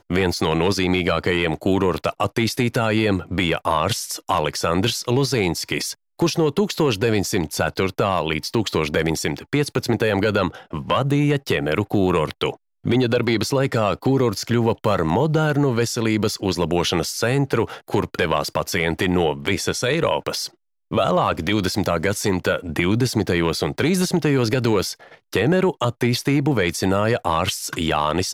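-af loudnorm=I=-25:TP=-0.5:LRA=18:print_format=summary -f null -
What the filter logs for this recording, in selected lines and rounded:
Input Integrated:    -20.9 LUFS
Input True Peak:      -5.7 dBTP
Input LRA:             1.5 LU
Input Threshold:     -30.9 LUFS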